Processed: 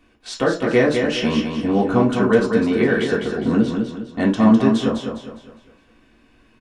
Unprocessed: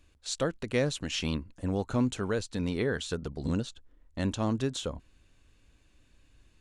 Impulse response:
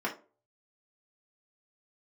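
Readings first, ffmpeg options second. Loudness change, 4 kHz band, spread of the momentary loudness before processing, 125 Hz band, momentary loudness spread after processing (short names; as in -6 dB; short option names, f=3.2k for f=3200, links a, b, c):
+13.5 dB, +7.5 dB, 7 LU, +7.5 dB, 11 LU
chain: -filter_complex "[0:a]equalizer=f=100:w=3.3:g=-6,aecho=1:1:204|408|612|816|1020:0.531|0.207|0.0807|0.0315|0.0123[a];[1:a]atrim=start_sample=2205[b];[a][b]afir=irnorm=-1:irlink=0,volume=5.5dB"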